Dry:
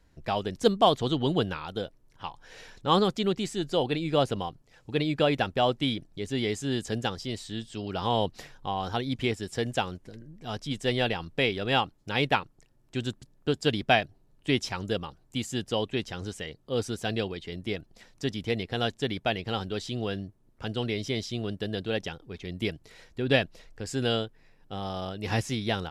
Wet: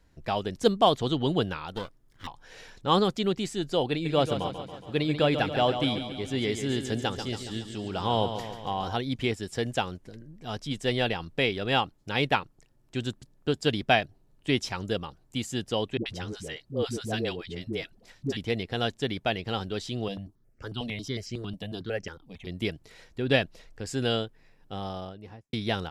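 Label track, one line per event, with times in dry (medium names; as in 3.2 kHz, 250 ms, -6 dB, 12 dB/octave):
1.730000	2.270000	comb filter that takes the minimum delay 0.6 ms
3.910000	8.950000	feedback delay 139 ms, feedback 59%, level -9 dB
15.970000	18.370000	phase dispersion highs, late by 88 ms, half as late at 460 Hz
20.080000	22.470000	stepped phaser 11 Hz 380–3600 Hz
24.730000	25.530000	studio fade out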